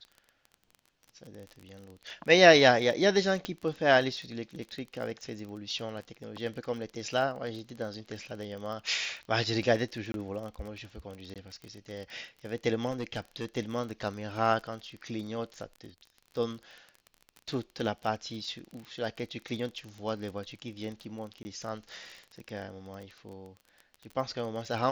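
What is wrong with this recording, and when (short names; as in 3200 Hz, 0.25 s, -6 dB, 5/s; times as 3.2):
crackle 29/s -38 dBFS
3.45 pop -19 dBFS
10.12–10.14 gap 22 ms
11.34–11.36 gap 17 ms
12.9–13.45 clipped -28.5 dBFS
21.43–21.45 gap 20 ms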